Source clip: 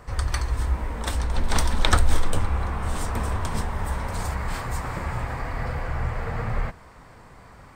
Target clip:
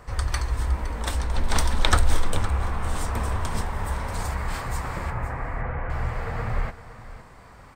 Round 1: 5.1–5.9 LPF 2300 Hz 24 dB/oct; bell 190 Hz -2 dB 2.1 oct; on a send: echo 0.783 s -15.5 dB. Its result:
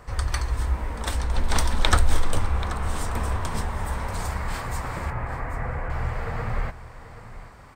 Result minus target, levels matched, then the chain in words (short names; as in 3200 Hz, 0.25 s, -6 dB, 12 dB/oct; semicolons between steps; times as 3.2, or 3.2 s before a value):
echo 0.27 s late
5.1–5.9 LPF 2300 Hz 24 dB/oct; bell 190 Hz -2 dB 2.1 oct; on a send: echo 0.513 s -15.5 dB